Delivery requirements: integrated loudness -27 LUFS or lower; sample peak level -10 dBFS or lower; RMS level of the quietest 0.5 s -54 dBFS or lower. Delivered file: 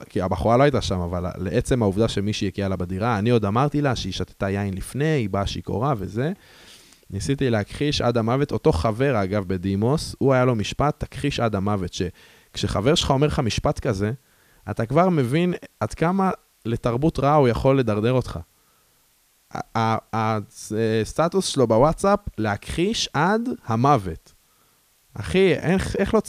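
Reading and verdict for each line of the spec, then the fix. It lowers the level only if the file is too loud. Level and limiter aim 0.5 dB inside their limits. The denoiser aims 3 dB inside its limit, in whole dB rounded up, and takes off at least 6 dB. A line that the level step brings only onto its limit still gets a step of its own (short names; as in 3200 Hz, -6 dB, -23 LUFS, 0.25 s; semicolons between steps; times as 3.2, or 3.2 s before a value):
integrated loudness -22.5 LUFS: fail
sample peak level -4.0 dBFS: fail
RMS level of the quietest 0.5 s -61 dBFS: OK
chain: gain -5 dB; limiter -10.5 dBFS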